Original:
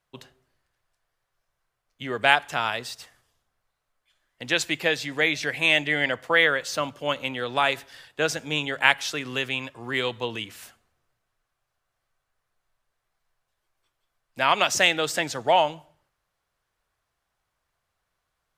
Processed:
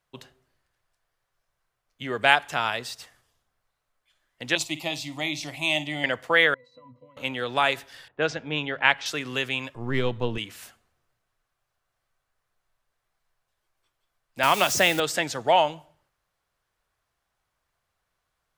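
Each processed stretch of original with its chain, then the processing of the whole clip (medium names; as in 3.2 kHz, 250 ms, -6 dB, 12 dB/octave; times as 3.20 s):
4.55–6.04 s: peaking EQ 400 Hz -13.5 dB 0.21 oct + static phaser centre 320 Hz, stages 8 + flutter echo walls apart 8.9 m, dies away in 0.22 s
6.54–7.17 s: compression 16:1, threshold -32 dBFS + pitch-class resonator B, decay 0.17 s
8.08–9.06 s: level-controlled noise filter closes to 1.3 kHz, open at -17.5 dBFS + distance through air 130 m
9.75–10.38 s: partial rectifier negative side -3 dB + tilt EQ -3 dB/octave
14.43–15.00 s: zero-crossing glitches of -20.5 dBFS + tilt EQ -1.5 dB/octave + three bands compressed up and down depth 40%
whole clip: none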